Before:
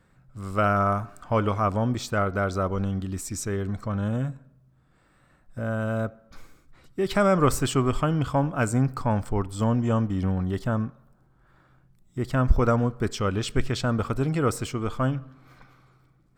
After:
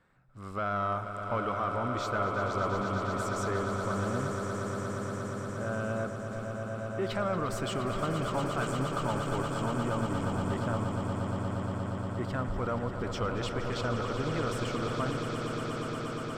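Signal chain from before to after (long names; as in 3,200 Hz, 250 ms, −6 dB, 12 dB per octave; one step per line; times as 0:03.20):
brickwall limiter −17.5 dBFS, peak gain reduction 11 dB
mid-hump overdrive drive 8 dB, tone 2,300 Hz, clips at −17.5 dBFS
echo that builds up and dies away 118 ms, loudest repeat 8, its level −10 dB
level −5 dB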